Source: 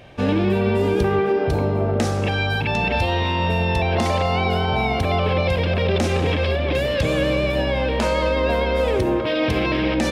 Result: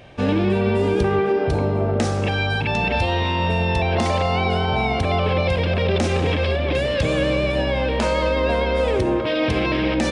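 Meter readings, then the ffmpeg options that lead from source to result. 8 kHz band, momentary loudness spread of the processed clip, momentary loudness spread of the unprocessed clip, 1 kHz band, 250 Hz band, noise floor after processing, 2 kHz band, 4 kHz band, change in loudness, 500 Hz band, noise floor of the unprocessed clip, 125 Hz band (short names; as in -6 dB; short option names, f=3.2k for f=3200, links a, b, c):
0.0 dB, 2 LU, 2 LU, 0.0 dB, 0.0 dB, -22 dBFS, 0.0 dB, 0.0 dB, 0.0 dB, 0.0 dB, -22 dBFS, 0.0 dB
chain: -af "aresample=22050,aresample=44100"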